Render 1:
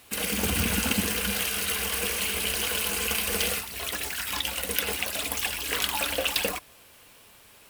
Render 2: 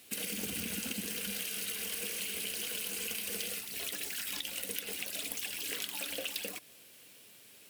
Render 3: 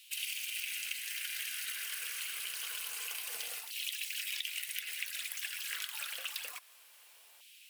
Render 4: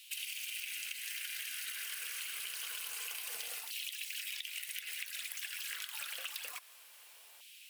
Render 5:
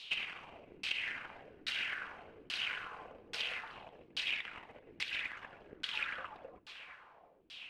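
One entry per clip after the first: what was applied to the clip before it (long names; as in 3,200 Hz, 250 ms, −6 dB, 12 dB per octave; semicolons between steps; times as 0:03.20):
high-pass filter 170 Hz 12 dB per octave; parametric band 1,000 Hz −12.5 dB 1.4 octaves; downward compressor, threshold −33 dBFS, peak gain reduction 11.5 dB; level −1.5 dB
auto-filter high-pass saw down 0.27 Hz 800–2,900 Hz; level −3 dB
downward compressor, threshold −40 dBFS, peak gain reduction 8.5 dB; level +2 dB
each half-wave held at its own peak; echo with a time of its own for lows and highs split 2,400 Hz, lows 348 ms, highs 136 ms, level −13.5 dB; auto-filter low-pass saw down 1.2 Hz 290–4,400 Hz; level −2.5 dB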